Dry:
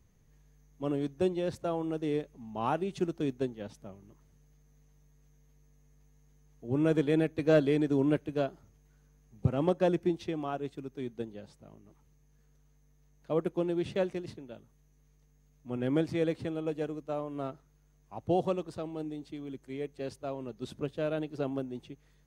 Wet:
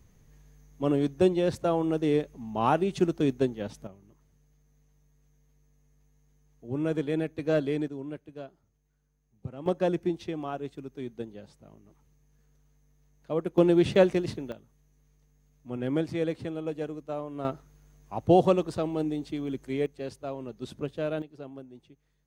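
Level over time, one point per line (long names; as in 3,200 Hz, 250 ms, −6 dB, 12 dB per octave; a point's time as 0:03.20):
+6.5 dB
from 0:03.87 −2 dB
from 0:07.88 −11 dB
from 0:09.66 +0.5 dB
from 0:13.58 +10 dB
from 0:14.52 +0.5 dB
from 0:17.45 +8.5 dB
from 0:19.86 +1.5 dB
from 0:21.22 −9 dB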